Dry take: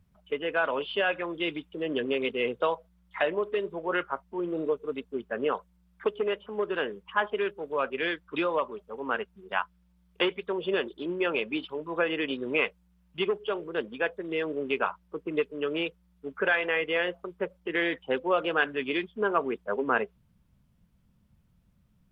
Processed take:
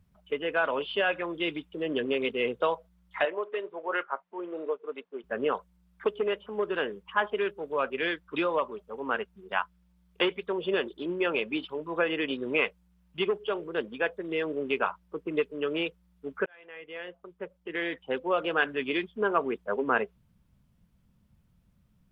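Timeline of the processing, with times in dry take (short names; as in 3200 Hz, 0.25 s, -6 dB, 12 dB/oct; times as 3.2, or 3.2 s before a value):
3.25–5.24 BPF 480–2800 Hz
16.46–18.71 fade in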